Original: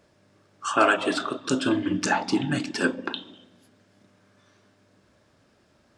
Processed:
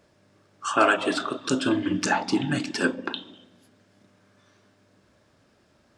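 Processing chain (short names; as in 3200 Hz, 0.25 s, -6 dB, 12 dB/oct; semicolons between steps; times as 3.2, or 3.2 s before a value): 0.78–2.89 mismatched tape noise reduction encoder only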